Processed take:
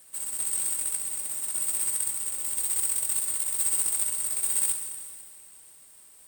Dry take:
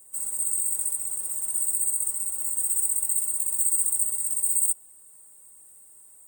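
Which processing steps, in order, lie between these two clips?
Schroeder reverb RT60 2 s, combs from 32 ms, DRR 6 dB; companded quantiser 4-bit; trim -3.5 dB

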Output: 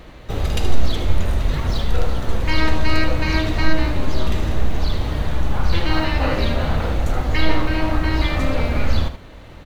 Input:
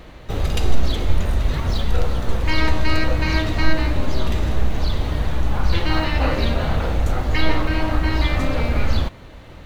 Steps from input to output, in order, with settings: delay 76 ms -10 dB

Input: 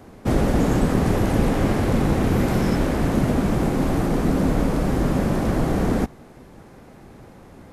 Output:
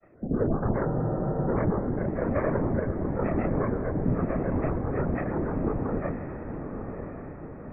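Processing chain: sorted samples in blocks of 128 samples; rippled Chebyshev low-pass 1.3 kHz, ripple 3 dB; granulator 100 ms, grains 22 per s, pitch spread up and down by 12 st; rotary cabinet horn 1.1 Hz, later 6 Hz, at 3.04 s; chorus voices 2, 0.73 Hz, delay 26 ms, depth 4.9 ms; whisper effect; echo that smears into a reverb 1028 ms, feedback 53%, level -8 dB; spectral freeze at 0.89 s, 0.58 s

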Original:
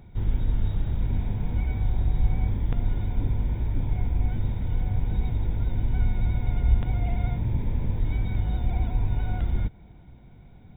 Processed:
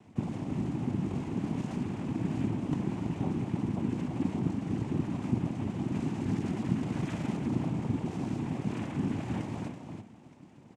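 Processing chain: formant shift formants +4 st; feedback delay 330 ms, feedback 21%, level -8 dB; noise-vocoded speech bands 4; trim -3 dB

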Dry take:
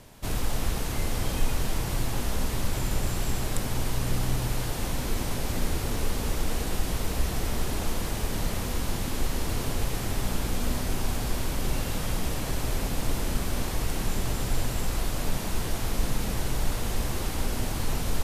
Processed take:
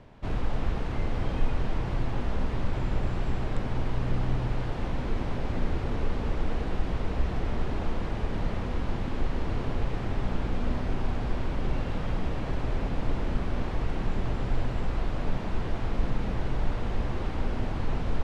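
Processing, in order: low-pass 3.3 kHz 12 dB/octave; treble shelf 2.5 kHz -8.5 dB

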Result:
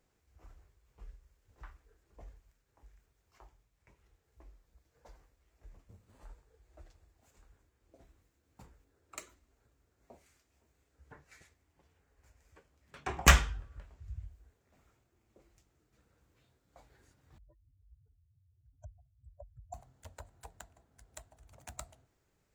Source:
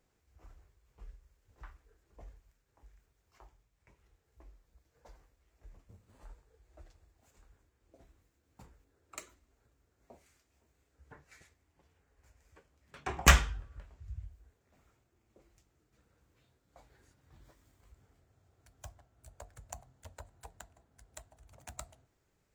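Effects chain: 17.38–19.74 s: spectral contrast enhancement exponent 3.7

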